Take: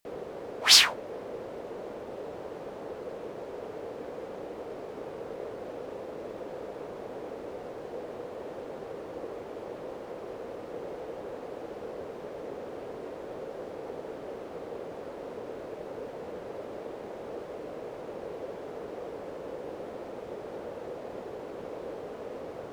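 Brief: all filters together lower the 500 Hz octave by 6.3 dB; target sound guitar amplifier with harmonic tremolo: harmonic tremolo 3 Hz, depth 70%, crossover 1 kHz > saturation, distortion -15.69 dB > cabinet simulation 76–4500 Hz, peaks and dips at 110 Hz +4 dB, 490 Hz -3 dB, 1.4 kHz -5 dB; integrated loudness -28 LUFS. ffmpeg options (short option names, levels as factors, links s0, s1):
-filter_complex "[0:a]equalizer=f=500:t=o:g=-5.5,acrossover=split=1000[s0][s1];[s0]aeval=exprs='val(0)*(1-0.7/2+0.7/2*cos(2*PI*3*n/s))':c=same[s2];[s1]aeval=exprs='val(0)*(1-0.7/2-0.7/2*cos(2*PI*3*n/s))':c=same[s3];[s2][s3]amix=inputs=2:normalize=0,asoftclip=threshold=0.211,highpass=76,equalizer=f=110:t=q:w=4:g=4,equalizer=f=490:t=q:w=4:g=-3,equalizer=f=1400:t=q:w=4:g=-5,lowpass=f=4500:w=0.5412,lowpass=f=4500:w=1.3066,volume=4.73"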